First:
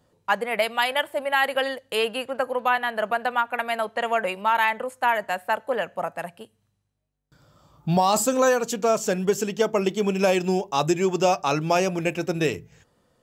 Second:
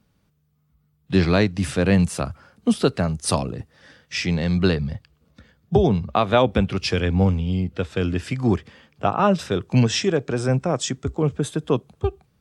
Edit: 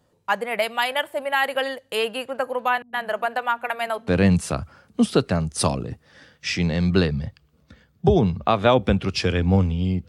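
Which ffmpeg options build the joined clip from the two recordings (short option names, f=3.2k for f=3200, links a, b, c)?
-filter_complex "[0:a]asettb=1/sr,asplit=3[a][b][c];[a]atrim=end=2.824[d];[b]atrim=start=2.82:end=4.08,asetpts=PTS-STARTPTS,afade=t=in:d=0.004:c=qsin,afade=t=out:st=1.256:d=0.004:c=qsin,acrossover=split=200[e][f];[f]adelay=110[g];[e][g]amix=inputs=2:normalize=0,atrim=end_sample=55566[h];[c]atrim=start=4.076[i];[d][h]acrossfade=d=0.004:c1=hsin:c2=qsin[j];[j][i]acrossfade=d=0.004:c1=qsin:c2=hsin,apad=whole_dur=10.08,atrim=end=10.08,atrim=end=4.082[k];[1:a]atrim=start=1.758:end=7.76[l];[k][l]acrossfade=d=0.004:c1=hsin:c2=hsin"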